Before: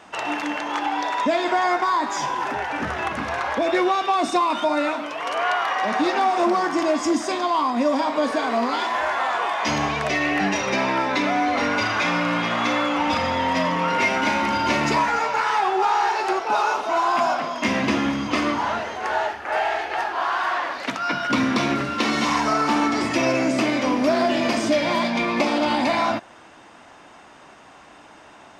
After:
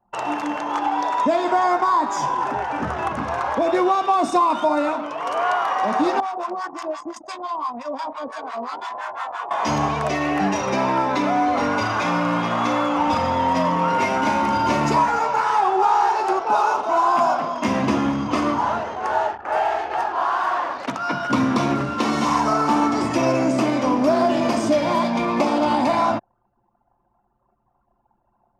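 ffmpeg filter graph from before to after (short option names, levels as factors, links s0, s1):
-filter_complex "[0:a]asettb=1/sr,asplit=3[s0][s1][s2];[s0]atrim=end=6.204[s3];[s1]atrim=start=6.2:end=9.51,asetpts=PTS-STARTPTS,afade=t=in:d=0.004:c=qsin,afade=t=out:st=3.306:d=0.004:c=qsin,highpass=f=790:p=1,acrossover=split=840[s4][s5];[s4]aeval=exprs='val(0)*(1-1/2+1/2*cos(2*PI*5.8*n/s))':c=same[s6];[s5]aeval=exprs='val(0)*(1-1/2-1/2*cos(2*PI*5.8*n/s))':c=same[s7];[s6][s7]amix=inputs=2:normalize=0[s8];[s2]atrim=start=9.506[s9];[s3][s8]acrossfade=d=0.004:c1=hsin:c2=qsin[s10];[s10][s9]acrossfade=d=0.004:c1=qsin:c2=hsin,anlmdn=6.31,equalizer=f=125:t=o:w=1:g=4,equalizer=f=1000:t=o:w=1:g=4,equalizer=f=2000:t=o:w=1:g=-7,equalizer=f=4000:t=o:w=1:g=-5,volume=1.12"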